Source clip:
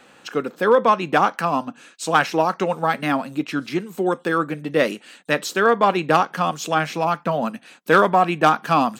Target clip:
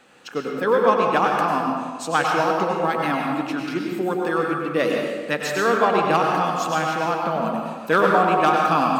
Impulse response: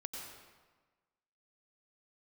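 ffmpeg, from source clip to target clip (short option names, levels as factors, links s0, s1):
-filter_complex "[1:a]atrim=start_sample=2205,asetrate=41013,aresample=44100[s0];[0:a][s0]afir=irnorm=-1:irlink=0"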